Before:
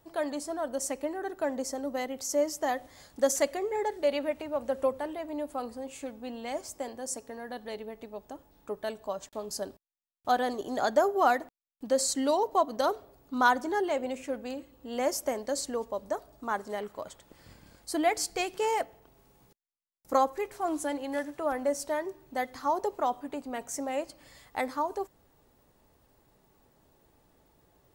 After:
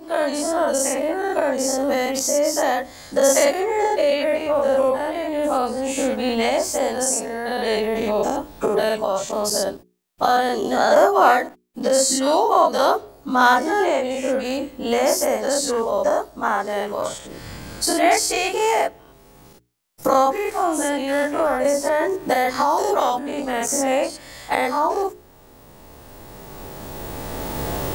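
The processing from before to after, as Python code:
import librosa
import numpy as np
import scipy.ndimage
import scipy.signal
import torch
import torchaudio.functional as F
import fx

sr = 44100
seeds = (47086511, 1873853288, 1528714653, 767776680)

y = fx.spec_dilate(x, sr, span_ms=120)
y = fx.recorder_agc(y, sr, target_db=-15.0, rise_db_per_s=10.0, max_gain_db=30)
y = fx.hum_notches(y, sr, base_hz=60, count=7)
y = fx.band_squash(y, sr, depth_pct=100, at=(21.64, 23.19))
y = F.gain(torch.from_numpy(y), 4.5).numpy()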